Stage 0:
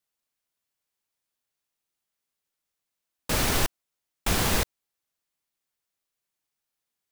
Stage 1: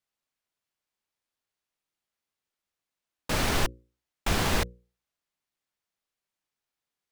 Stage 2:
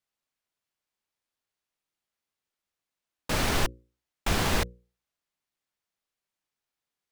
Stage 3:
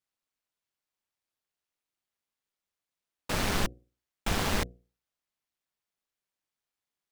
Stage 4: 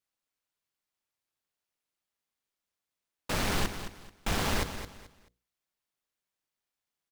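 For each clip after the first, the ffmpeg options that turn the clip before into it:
ffmpeg -i in.wav -af "highshelf=frequency=7200:gain=-10,bandreject=frequency=60:width_type=h:width=6,bandreject=frequency=120:width_type=h:width=6,bandreject=frequency=180:width_type=h:width=6,bandreject=frequency=240:width_type=h:width=6,bandreject=frequency=300:width_type=h:width=6,bandreject=frequency=360:width_type=h:width=6,bandreject=frequency=420:width_type=h:width=6,bandreject=frequency=480:width_type=h:width=6,bandreject=frequency=540:width_type=h:width=6" out.wav
ffmpeg -i in.wav -af anull out.wav
ffmpeg -i in.wav -af "tremolo=f=200:d=0.621" out.wav
ffmpeg -i in.wav -filter_complex "[0:a]asplit=2[link_01][link_02];[link_02]aeval=exprs='0.211*sin(PI/2*1.78*val(0)/0.211)':channel_layout=same,volume=-7dB[link_03];[link_01][link_03]amix=inputs=2:normalize=0,aecho=1:1:217|434|651:0.299|0.0806|0.0218,volume=-7dB" out.wav

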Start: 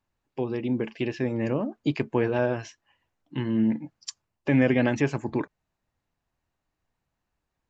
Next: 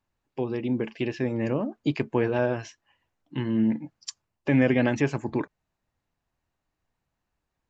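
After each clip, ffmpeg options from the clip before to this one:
ffmpeg -i in.wav -af anull out.wav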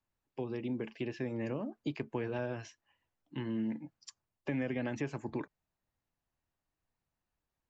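ffmpeg -i in.wav -filter_complex "[0:a]acrossover=split=240|1900[link_01][link_02][link_03];[link_01]acompressor=threshold=-32dB:ratio=4[link_04];[link_02]acompressor=threshold=-28dB:ratio=4[link_05];[link_03]acompressor=threshold=-41dB:ratio=4[link_06];[link_04][link_05][link_06]amix=inputs=3:normalize=0,volume=-7.5dB" out.wav

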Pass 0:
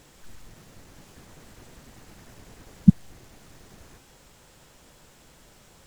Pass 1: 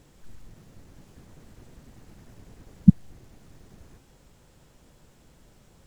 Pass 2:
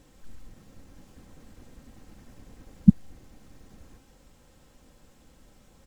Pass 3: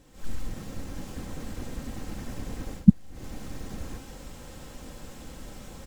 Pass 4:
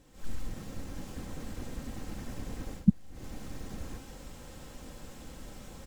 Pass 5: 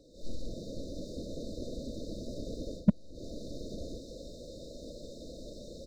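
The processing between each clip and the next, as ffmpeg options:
ffmpeg -i in.wav -af "lowshelf=frequency=480:gain=9.5,volume=-8dB" out.wav
ffmpeg -i in.wav -af "aecho=1:1:3.8:0.38,volume=-1dB" out.wav
ffmpeg -i in.wav -af "dynaudnorm=framelen=130:gausssize=3:maxgain=15dB,volume=-1dB" out.wav
ffmpeg -i in.wav -af "alimiter=level_in=5.5dB:limit=-1dB:release=50:level=0:latency=1,volume=-9dB" out.wav
ffmpeg -i in.wav -filter_complex "[0:a]afftfilt=real='re*(1-between(b*sr/4096,680,3600))':imag='im*(1-between(b*sr/4096,680,3600))':win_size=4096:overlap=0.75,acrossover=split=330 5000:gain=0.251 1 0.0708[link_01][link_02][link_03];[link_01][link_02][link_03]amix=inputs=3:normalize=0,volume=22.5dB,asoftclip=hard,volume=-22.5dB,volume=9dB" out.wav

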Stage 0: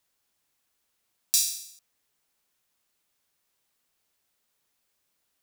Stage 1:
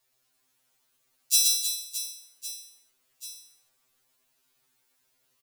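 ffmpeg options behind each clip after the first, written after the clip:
ffmpeg -i in.wav -filter_complex "[0:a]asplit=2[link_01][link_02];[link_02]aecho=0:1:120|312|619.2|1111|1897:0.631|0.398|0.251|0.158|0.1[link_03];[link_01][link_03]amix=inputs=2:normalize=0,afftfilt=real='re*2.45*eq(mod(b,6),0)':imag='im*2.45*eq(mod(b,6),0)':win_size=2048:overlap=0.75,volume=4.5dB" out.wav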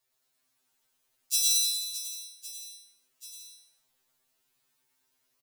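ffmpeg -i in.wav -af "aecho=1:1:100|170|219|253.3|277.3:0.631|0.398|0.251|0.158|0.1,volume=-5.5dB" out.wav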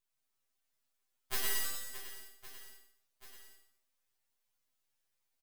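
ffmpeg -i in.wav -af "aeval=exprs='abs(val(0))':channel_layout=same,volume=-6.5dB" out.wav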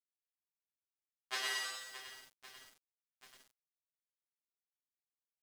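ffmpeg -i in.wav -af "highpass=570,lowpass=5200,aeval=exprs='val(0)*gte(abs(val(0)),0.00133)':channel_layout=same,volume=3dB" out.wav

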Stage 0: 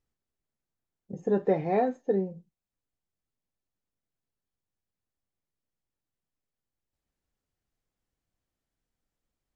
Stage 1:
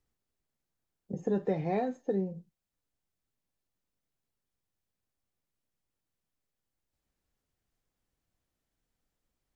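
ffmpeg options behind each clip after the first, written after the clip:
ffmpeg -i in.wav -filter_complex "[0:a]acrossover=split=180|3000[link_01][link_02][link_03];[link_02]acompressor=threshold=-33dB:ratio=3[link_04];[link_01][link_04][link_03]amix=inputs=3:normalize=0,volume=2dB" out.wav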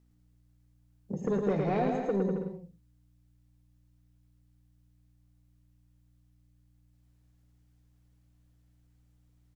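ffmpeg -i in.wav -af "asoftclip=type=tanh:threshold=-25.5dB,aeval=exprs='val(0)+0.000447*(sin(2*PI*60*n/s)+sin(2*PI*2*60*n/s)/2+sin(2*PI*3*60*n/s)/3+sin(2*PI*4*60*n/s)/4+sin(2*PI*5*60*n/s)/5)':channel_layout=same,aecho=1:1:110|198|268.4|324.7|369.8:0.631|0.398|0.251|0.158|0.1,volume=3dB" out.wav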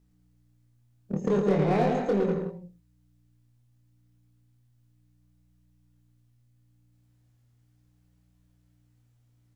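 ffmpeg -i in.wav -filter_complex "[0:a]asplit=2[link_01][link_02];[link_02]acrusher=bits=4:mix=0:aa=0.5,volume=-9dB[link_03];[link_01][link_03]amix=inputs=2:normalize=0,flanger=delay=22.5:depth=3.7:speed=0.36,volume=4.5dB" out.wav

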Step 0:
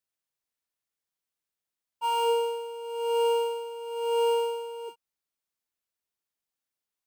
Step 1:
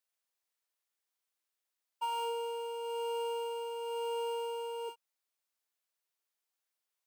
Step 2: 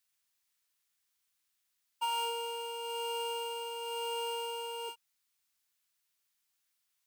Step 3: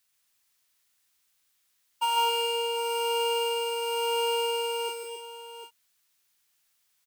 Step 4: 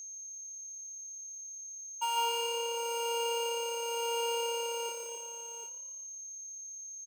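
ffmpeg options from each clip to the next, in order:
ffmpeg -i in.wav -af "highpass=430,acompressor=threshold=-35dB:ratio=6,volume=1dB" out.wav
ffmpeg -i in.wav -af "equalizer=frequency=540:width=0.72:gain=-12,volume=8dB" out.wav
ffmpeg -i in.wav -af "aecho=1:1:148|272|750:0.531|0.422|0.316,volume=6.5dB" out.wav
ffmpeg -i in.wav -filter_complex "[0:a]aeval=exprs='val(0)+0.0158*sin(2*PI*6400*n/s)':channel_layout=same,asplit=6[link_01][link_02][link_03][link_04][link_05][link_06];[link_02]adelay=131,afreqshift=35,volume=-17dB[link_07];[link_03]adelay=262,afreqshift=70,volume=-22.7dB[link_08];[link_04]adelay=393,afreqshift=105,volume=-28.4dB[link_09];[link_05]adelay=524,afreqshift=140,volume=-34dB[link_10];[link_06]adelay=655,afreqshift=175,volume=-39.7dB[link_11];[link_01][link_07][link_08][link_09][link_10][link_11]amix=inputs=6:normalize=0,volume=-6dB" out.wav

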